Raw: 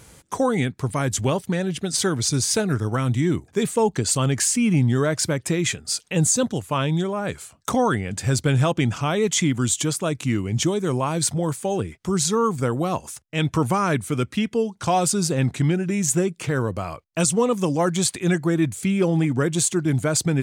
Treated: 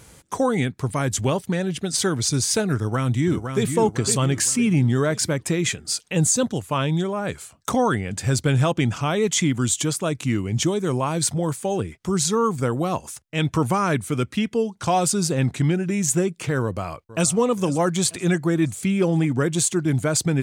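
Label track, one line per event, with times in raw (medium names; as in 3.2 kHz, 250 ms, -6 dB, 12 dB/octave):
2.760000	3.650000	echo throw 510 ms, feedback 45%, level -6.5 dB
16.620000	17.330000	echo throw 470 ms, feedback 50%, level -17 dB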